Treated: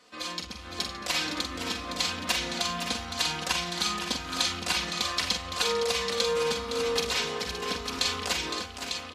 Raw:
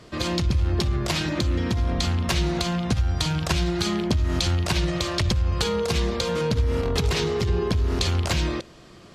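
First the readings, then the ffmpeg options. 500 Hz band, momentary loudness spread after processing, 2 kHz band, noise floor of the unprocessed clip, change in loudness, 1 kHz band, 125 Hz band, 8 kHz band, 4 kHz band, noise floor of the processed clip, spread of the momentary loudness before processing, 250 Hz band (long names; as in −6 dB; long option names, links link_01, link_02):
−4.5 dB, 7 LU, +0.5 dB, −47 dBFS, −4.5 dB, −1.0 dB, −20.5 dB, +1.5 dB, +1.0 dB, −42 dBFS, 2 LU, −11.5 dB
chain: -filter_complex "[0:a]dynaudnorm=framelen=100:gausssize=13:maxgain=5dB,highpass=frequency=990:poles=1,aecho=1:1:4:0.76,asplit=2[link_01][link_02];[link_02]aecho=0:1:45|512|568|899:0.501|0.376|0.237|0.501[link_03];[link_01][link_03]amix=inputs=2:normalize=0,volume=-7.5dB"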